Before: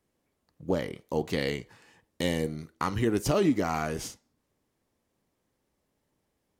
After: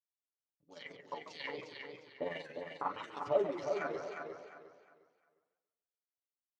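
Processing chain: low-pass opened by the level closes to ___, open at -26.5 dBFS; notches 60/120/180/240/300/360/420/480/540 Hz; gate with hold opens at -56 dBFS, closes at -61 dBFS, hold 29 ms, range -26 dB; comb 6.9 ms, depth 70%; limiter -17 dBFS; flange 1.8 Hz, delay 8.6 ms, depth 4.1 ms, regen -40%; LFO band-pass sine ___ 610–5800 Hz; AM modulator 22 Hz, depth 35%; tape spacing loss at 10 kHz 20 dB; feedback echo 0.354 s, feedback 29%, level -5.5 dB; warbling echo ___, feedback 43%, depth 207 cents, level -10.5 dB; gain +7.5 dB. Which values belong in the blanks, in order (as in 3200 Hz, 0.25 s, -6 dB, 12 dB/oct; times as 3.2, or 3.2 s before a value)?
440 Hz, 1.7 Hz, 0.144 s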